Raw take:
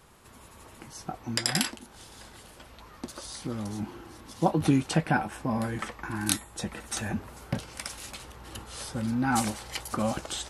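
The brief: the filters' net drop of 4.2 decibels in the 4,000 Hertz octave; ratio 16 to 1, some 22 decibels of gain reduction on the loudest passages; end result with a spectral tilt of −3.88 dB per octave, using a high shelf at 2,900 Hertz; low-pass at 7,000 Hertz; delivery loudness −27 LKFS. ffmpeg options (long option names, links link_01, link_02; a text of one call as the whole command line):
ffmpeg -i in.wav -af "lowpass=7000,highshelf=frequency=2900:gain=4.5,equalizer=frequency=4000:width_type=o:gain=-9,acompressor=threshold=-40dB:ratio=16,volume=18.5dB" out.wav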